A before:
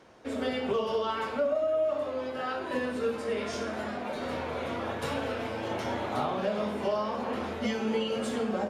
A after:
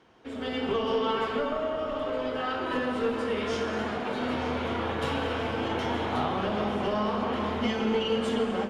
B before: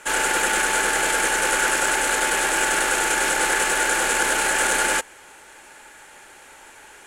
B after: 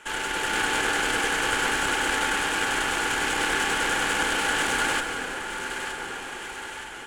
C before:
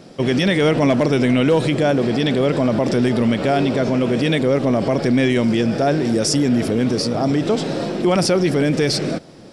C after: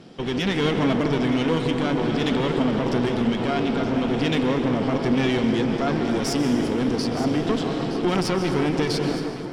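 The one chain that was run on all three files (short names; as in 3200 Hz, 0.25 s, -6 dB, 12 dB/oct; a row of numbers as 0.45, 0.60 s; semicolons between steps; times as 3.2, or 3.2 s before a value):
bell 3100 Hz +6.5 dB 0.28 oct; added harmonics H 4 -14 dB, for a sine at -6 dBFS; plate-style reverb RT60 2.8 s, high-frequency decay 0.5×, pre-delay 0.115 s, DRR 6 dB; in parallel at 0 dB: compressor, threshold -33 dBFS; on the sum: LPF 4000 Hz 6 dB/oct; bell 580 Hz -8 dB 0.3 oct; on a send: echo with dull and thin repeats by turns 0.459 s, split 1200 Hz, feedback 68%, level -9 dB; on the sum: AGC gain up to 8 dB; gain -9 dB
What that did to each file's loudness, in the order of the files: +2.5, -5.5, -5.0 LU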